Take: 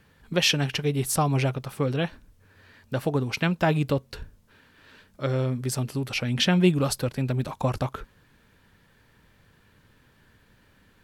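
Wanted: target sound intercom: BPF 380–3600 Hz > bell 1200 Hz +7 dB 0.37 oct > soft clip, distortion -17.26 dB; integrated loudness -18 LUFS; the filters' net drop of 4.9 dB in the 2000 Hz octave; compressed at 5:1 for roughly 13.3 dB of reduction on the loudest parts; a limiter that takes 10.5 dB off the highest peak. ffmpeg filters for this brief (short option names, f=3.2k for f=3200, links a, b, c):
-af "equalizer=f=2k:t=o:g=-7,acompressor=threshold=-30dB:ratio=5,alimiter=level_in=5.5dB:limit=-24dB:level=0:latency=1,volume=-5.5dB,highpass=380,lowpass=3.6k,equalizer=f=1.2k:t=o:w=0.37:g=7,asoftclip=threshold=-34dB,volume=28dB"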